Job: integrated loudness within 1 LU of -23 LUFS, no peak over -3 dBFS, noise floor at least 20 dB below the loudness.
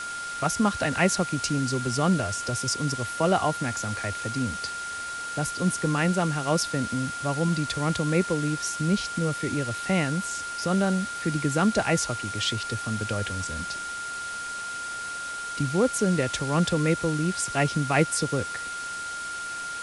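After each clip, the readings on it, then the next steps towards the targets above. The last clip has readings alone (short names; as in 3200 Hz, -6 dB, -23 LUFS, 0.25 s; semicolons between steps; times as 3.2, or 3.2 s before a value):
steady tone 1400 Hz; tone level -32 dBFS; noise floor -34 dBFS; noise floor target -47 dBFS; loudness -26.5 LUFS; peak -10.0 dBFS; loudness target -23.0 LUFS
-> notch 1400 Hz, Q 30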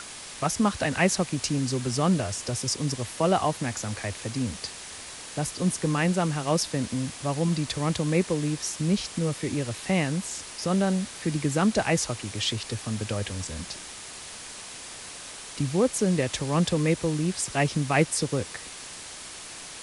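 steady tone none; noise floor -41 dBFS; noise floor target -47 dBFS
-> noise print and reduce 6 dB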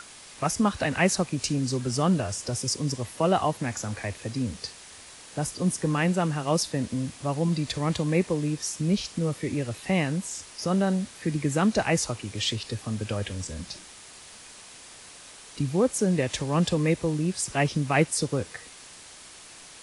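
noise floor -47 dBFS; loudness -27.0 LUFS; peak -10.5 dBFS; loudness target -23.0 LUFS
-> gain +4 dB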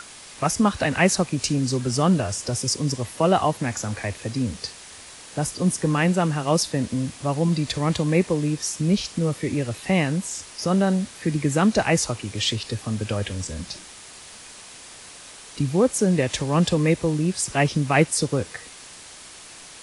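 loudness -23.0 LUFS; peak -6.5 dBFS; noise floor -43 dBFS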